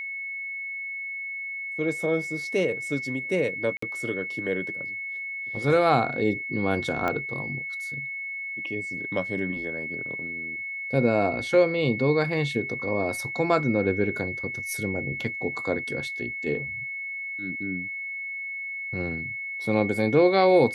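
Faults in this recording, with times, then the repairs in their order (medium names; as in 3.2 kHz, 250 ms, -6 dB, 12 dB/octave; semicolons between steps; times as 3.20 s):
whine 2.2 kHz -31 dBFS
3.77–3.82 s: dropout 54 ms
7.08 s: pop -14 dBFS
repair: de-click; band-stop 2.2 kHz, Q 30; interpolate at 3.77 s, 54 ms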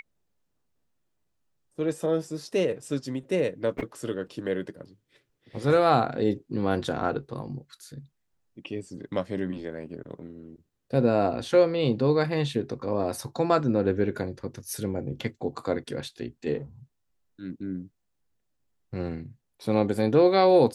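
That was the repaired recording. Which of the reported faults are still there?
7.08 s: pop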